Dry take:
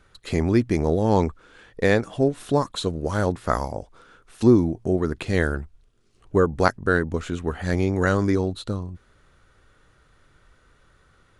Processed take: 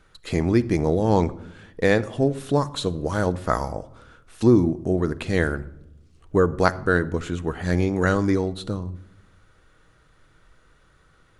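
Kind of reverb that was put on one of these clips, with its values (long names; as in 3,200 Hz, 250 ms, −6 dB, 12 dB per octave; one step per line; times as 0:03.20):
rectangular room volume 2,800 cubic metres, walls furnished, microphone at 0.6 metres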